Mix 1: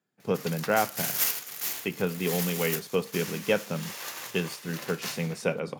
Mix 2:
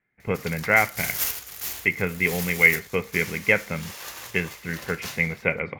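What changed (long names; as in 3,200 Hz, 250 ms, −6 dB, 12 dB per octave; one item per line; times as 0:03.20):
speech: add low-pass with resonance 2,100 Hz, resonance Q 15
master: remove high-pass filter 140 Hz 24 dB per octave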